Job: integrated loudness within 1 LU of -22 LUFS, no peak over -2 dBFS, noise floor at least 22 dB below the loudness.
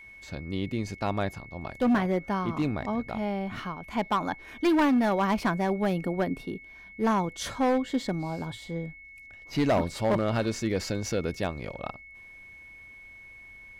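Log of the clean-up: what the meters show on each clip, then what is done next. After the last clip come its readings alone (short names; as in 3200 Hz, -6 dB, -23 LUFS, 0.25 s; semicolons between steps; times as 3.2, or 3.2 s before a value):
clipped 1.5%; flat tops at -19.0 dBFS; steady tone 2200 Hz; tone level -46 dBFS; loudness -28.5 LUFS; peak -19.0 dBFS; loudness target -22.0 LUFS
-> clip repair -19 dBFS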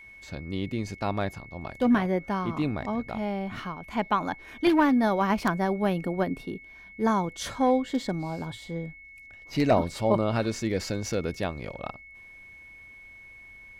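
clipped 0.0%; steady tone 2200 Hz; tone level -46 dBFS
-> notch 2200 Hz, Q 30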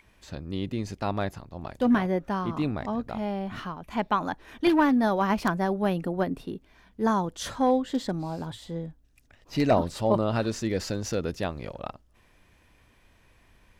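steady tone none; loudness -28.0 LUFS; peak -10.0 dBFS; loudness target -22.0 LUFS
-> gain +6 dB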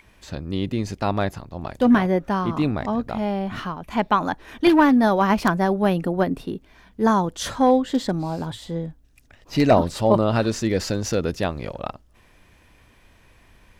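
loudness -22.0 LUFS; peak -4.0 dBFS; noise floor -55 dBFS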